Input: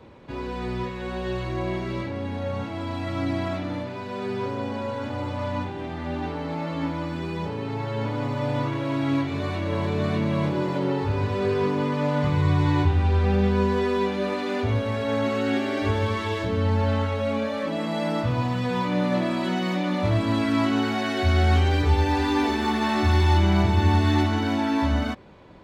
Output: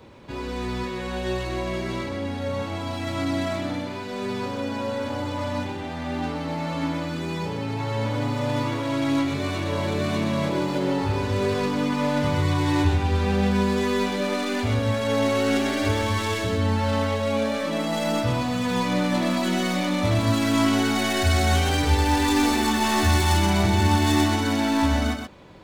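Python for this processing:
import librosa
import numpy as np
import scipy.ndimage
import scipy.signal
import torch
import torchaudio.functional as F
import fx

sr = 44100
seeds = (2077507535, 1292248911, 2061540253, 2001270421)

y = fx.tracing_dist(x, sr, depth_ms=0.075)
y = fx.high_shelf(y, sr, hz=4500.0, db=11.0)
y = y + 10.0 ** (-6.0 / 20.0) * np.pad(y, (int(126 * sr / 1000.0), 0))[:len(y)]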